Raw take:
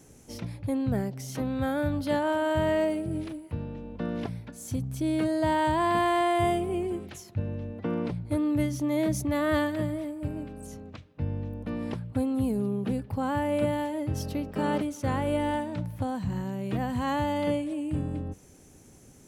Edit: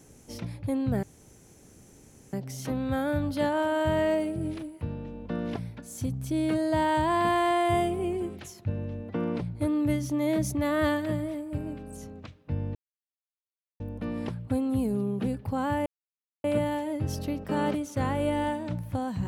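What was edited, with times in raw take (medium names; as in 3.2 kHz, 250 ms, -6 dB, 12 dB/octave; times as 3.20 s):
1.03 s: insert room tone 1.30 s
11.45 s: insert silence 1.05 s
13.51 s: insert silence 0.58 s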